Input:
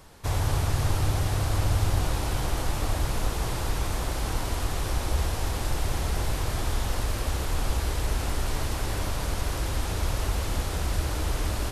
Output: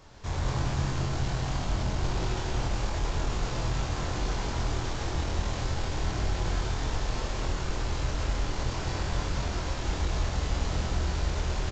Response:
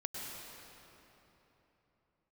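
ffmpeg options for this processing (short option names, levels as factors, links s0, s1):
-filter_complex "[0:a]aresample=16000,asoftclip=type=tanh:threshold=0.0562,aresample=44100,asplit=2[s0][s1];[s1]adelay=24,volume=0.708[s2];[s0][s2]amix=inputs=2:normalize=0[s3];[1:a]atrim=start_sample=2205,afade=t=out:st=0.33:d=0.01,atrim=end_sample=14994[s4];[s3][s4]afir=irnorm=-1:irlink=0"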